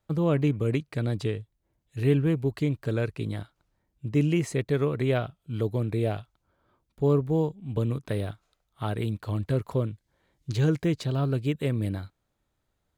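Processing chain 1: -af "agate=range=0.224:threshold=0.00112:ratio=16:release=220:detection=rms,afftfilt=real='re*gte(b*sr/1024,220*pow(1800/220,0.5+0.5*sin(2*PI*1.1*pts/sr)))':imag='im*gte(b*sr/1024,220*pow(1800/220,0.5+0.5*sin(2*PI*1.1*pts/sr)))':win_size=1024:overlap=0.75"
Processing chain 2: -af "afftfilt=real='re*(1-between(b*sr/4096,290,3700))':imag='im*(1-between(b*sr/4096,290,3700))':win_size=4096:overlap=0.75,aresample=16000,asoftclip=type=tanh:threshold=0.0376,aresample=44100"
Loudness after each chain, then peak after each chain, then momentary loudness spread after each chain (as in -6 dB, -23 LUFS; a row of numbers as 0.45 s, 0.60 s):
-34.5 LUFS, -35.0 LUFS; -14.0 dBFS, -27.5 dBFS; 16 LU, 9 LU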